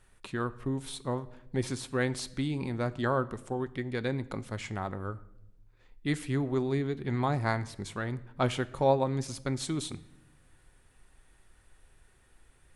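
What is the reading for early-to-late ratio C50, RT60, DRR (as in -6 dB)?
19.0 dB, 0.85 s, 12.0 dB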